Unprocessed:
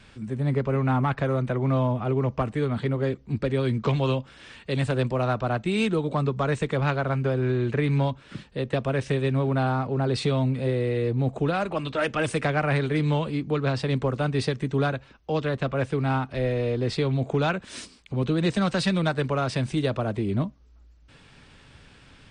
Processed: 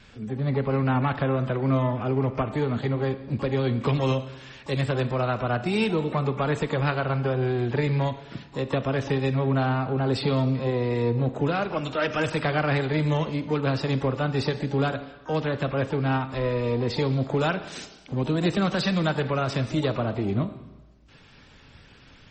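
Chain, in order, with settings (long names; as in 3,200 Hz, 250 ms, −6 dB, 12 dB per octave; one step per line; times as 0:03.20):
four-comb reverb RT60 1.2 s, combs from 26 ms, DRR 11 dB
pitch-shifted copies added +12 semitones −14 dB
MP3 32 kbit/s 48,000 Hz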